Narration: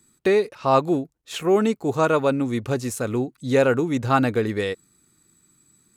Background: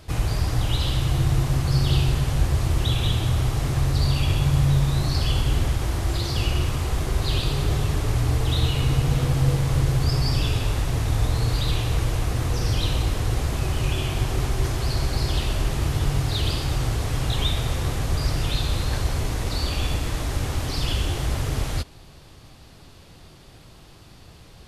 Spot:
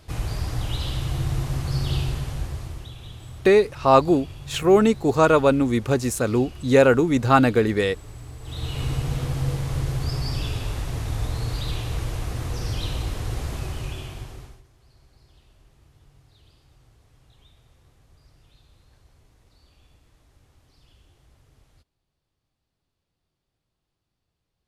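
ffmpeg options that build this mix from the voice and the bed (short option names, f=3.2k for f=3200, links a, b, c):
-filter_complex "[0:a]adelay=3200,volume=3dB[a];[1:a]volume=8.5dB,afade=t=out:st=2:d=0.91:silence=0.211349,afade=t=in:st=8.41:d=0.42:silence=0.223872,afade=t=out:st=13.53:d=1.1:silence=0.0398107[b];[a][b]amix=inputs=2:normalize=0"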